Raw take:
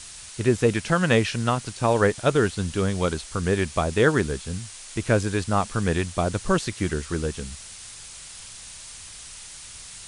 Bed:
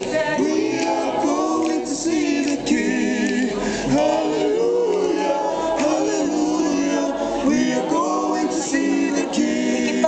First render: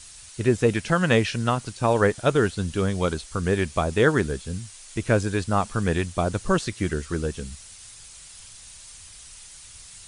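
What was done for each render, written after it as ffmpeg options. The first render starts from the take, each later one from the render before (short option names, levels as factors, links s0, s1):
-af "afftdn=nr=6:nf=-42"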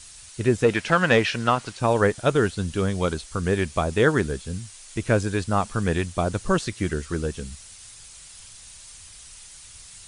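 -filter_complex "[0:a]asettb=1/sr,asplit=3[s0][s1][s2];[s0]atrim=end=0.644[s3];[s1]atrim=start=0.64:end=1.8,asetpts=PTS-STARTPTS,afade=t=in:d=0.004:c=qsin,afade=t=out:st=1.156:d=0.004:c=qsin,asplit=2[s4][s5];[s5]highpass=f=720:p=1,volume=3.98,asoftclip=type=tanh:threshold=0.596[s6];[s4][s6]amix=inputs=2:normalize=0,lowpass=f=2600:p=1,volume=0.501[s7];[s2]atrim=start=1.796[s8];[s3][s7]acrossfade=d=0.004:c1=hsin:c2=qsin[s9];[s9][s8]acrossfade=d=0.004:c1=qsin:c2=hsin"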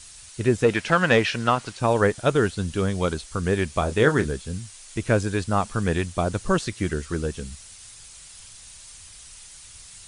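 -filter_complex "[0:a]asettb=1/sr,asplit=3[s0][s1][s2];[s0]atrim=end=3.794[s3];[s1]atrim=start=3.79:end=4.31,asetpts=PTS-STARTPTS,afade=t=in:d=0.004:c=qsin,afade=t=out:st=0.516:d=0.004:c=qsin,asplit=2[s4][s5];[s5]adelay=27,volume=0.316[s6];[s4][s6]amix=inputs=2:normalize=0,atrim=end_sample=22932[s7];[s2]atrim=start=4.306[s8];[s3][s7]acrossfade=d=0.004:c1=hsin:c2=qsin[s9];[s9][s8]acrossfade=d=0.004:c1=qsin:c2=hsin"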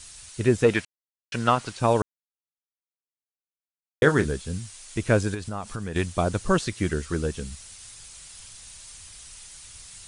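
-filter_complex "[0:a]asettb=1/sr,asplit=3[s0][s1][s2];[s0]atrim=end=5.344[s3];[s1]atrim=start=5.34:end=5.96,asetpts=PTS-STARTPTS,afade=t=in:d=0.004:c=qsin,afade=t=out:st=0.616:d=0.004:c=qsin,acompressor=threshold=0.0355:ratio=4:attack=3.2:release=140:knee=1:detection=peak[s4];[s2]atrim=start=5.956[s5];[s3][s4]acrossfade=d=0.004:c1=hsin:c2=qsin[s6];[s6][s5]acrossfade=d=0.004:c1=qsin:c2=hsin,asplit=5[s7][s8][s9][s10][s11];[s7]atrim=end=0.85,asetpts=PTS-STARTPTS,afade=t=out:st=0.846:d=0.004:c=hsin[s12];[s8]atrim=start=0.85:end=1.32,asetpts=PTS-STARTPTS,volume=0[s13];[s9]atrim=start=1.32:end=2.02,asetpts=PTS-STARTPTS,afade=t=in:d=0.004:c=hsin,afade=t=out:st=0.696:d=0.004:c=hsin[s14];[s10]atrim=start=2.02:end=4.02,asetpts=PTS-STARTPTS,volume=0[s15];[s11]atrim=start=4.02,asetpts=PTS-STARTPTS,afade=t=in:d=0.004:c=hsin[s16];[s12][s13][s14][s15][s16]concat=n=5:v=0:a=1"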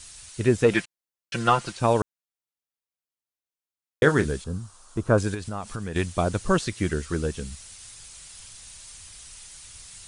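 -filter_complex "[0:a]asettb=1/sr,asplit=3[s0][s1][s2];[s0]atrim=end=0.714[s3];[s1]atrim=start=0.71:end=1.72,asetpts=PTS-STARTPTS,afade=t=in:d=0.004:c=qsin,afade=t=out:st=1.006:d=0.004:c=qsin,aecho=1:1:5.8:0.65,atrim=end_sample=44541[s4];[s2]atrim=start=1.716[s5];[s3][s4]acrossfade=d=0.004:c1=hsin:c2=qsin[s6];[s6][s5]acrossfade=d=0.004:c1=qsin:c2=hsin,asettb=1/sr,asplit=3[s7][s8][s9];[s7]atrim=end=4.444[s10];[s8]atrim=start=4.44:end=5.18,asetpts=PTS-STARTPTS,afade=t=in:d=0.004:c=qsin,afade=t=out:st=0.736:d=0.004:c=qsin,highshelf=f=1600:t=q:w=3:g=-9[s11];[s9]atrim=start=5.176[s12];[s10][s11]acrossfade=d=0.004:c1=hsin:c2=qsin[s13];[s13][s12]acrossfade=d=0.004:c1=qsin:c2=hsin"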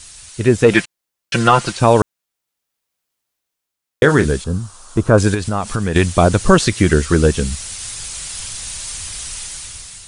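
-af "dynaudnorm=f=200:g=7:m=3.35,alimiter=level_in=2:limit=0.891:release=50:level=0:latency=1"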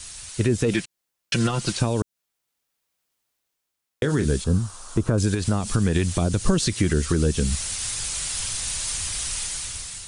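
-filter_complex "[0:a]alimiter=limit=0.355:level=0:latency=1:release=170,acrossover=split=380|3000[s0][s1][s2];[s1]acompressor=threshold=0.0316:ratio=6[s3];[s0][s3][s2]amix=inputs=3:normalize=0"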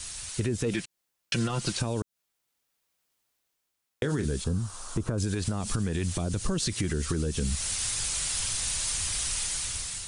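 -af "alimiter=limit=0.2:level=0:latency=1:release=30,acompressor=threshold=0.0447:ratio=2.5"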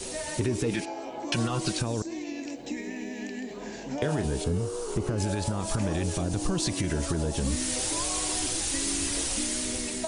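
-filter_complex "[1:a]volume=0.158[s0];[0:a][s0]amix=inputs=2:normalize=0"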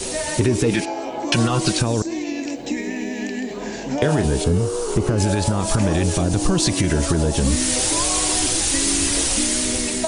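-af "volume=2.99"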